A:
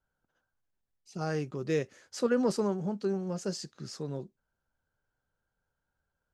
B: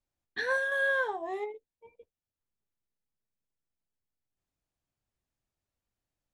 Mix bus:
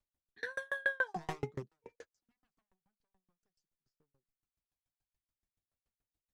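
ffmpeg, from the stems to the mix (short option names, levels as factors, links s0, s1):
-filter_complex "[0:a]aeval=exprs='0.0282*(abs(mod(val(0)/0.0282+3,4)-2)-1)':c=same,volume=1.19[s0];[1:a]volume=0.944,asplit=2[s1][s2];[s2]apad=whole_len=279481[s3];[s0][s3]sidechaingate=range=0.01:threshold=0.002:ratio=16:detection=peak[s4];[s4][s1]amix=inputs=2:normalize=0,aphaser=in_gain=1:out_gain=1:delay=1.3:decay=0.41:speed=0.51:type=sinusoidal,aeval=exprs='val(0)*pow(10,-36*if(lt(mod(7*n/s,1),2*abs(7)/1000),1-mod(7*n/s,1)/(2*abs(7)/1000),(mod(7*n/s,1)-2*abs(7)/1000)/(1-2*abs(7)/1000))/20)':c=same"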